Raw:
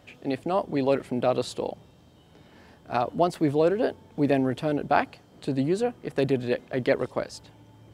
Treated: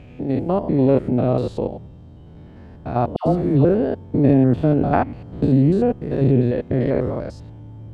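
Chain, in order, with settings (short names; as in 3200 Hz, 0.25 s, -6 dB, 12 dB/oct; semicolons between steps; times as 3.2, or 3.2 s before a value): stepped spectrum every 0.1 s; tilt -4 dB/oct; 3.16–3.65 dispersion lows, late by 0.101 s, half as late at 1000 Hz; 4.29–5.93 three-band squash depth 70%; gain +4 dB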